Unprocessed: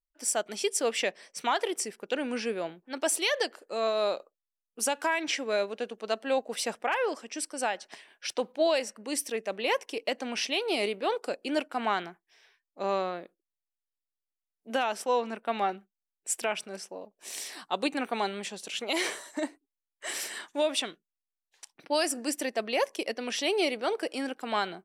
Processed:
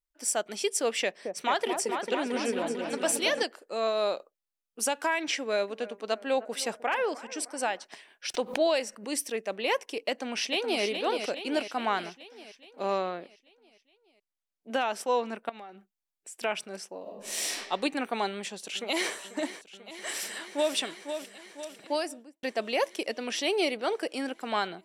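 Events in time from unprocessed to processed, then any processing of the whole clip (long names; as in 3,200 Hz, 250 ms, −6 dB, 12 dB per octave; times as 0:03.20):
0:01.02–0:03.43: echo whose low-pass opens from repeat to repeat 223 ms, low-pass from 750 Hz, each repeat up 2 octaves, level −3 dB
0:05.37–0:07.84: bucket-brigade delay 307 ms, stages 4,096, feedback 55%, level −17.5 dB
0:08.34–0:09.13: background raised ahead of every attack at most 150 dB per second
0:10.10–0:10.83: delay throw 420 ms, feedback 60%, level −6.5 dB
0:13.00–0:14.94: high-shelf EQ 9,400 Hz −7.5 dB
0:15.49–0:16.41: downward compressor, threshold −42 dBFS
0:17.02–0:17.52: thrown reverb, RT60 1.2 s, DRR −8.5 dB
0:18.26–0:19.12: delay throw 490 ms, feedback 80%, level −13.5 dB
0:20.08–0:20.75: delay throw 500 ms, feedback 50%, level −8 dB
0:21.77–0:22.43: fade out and dull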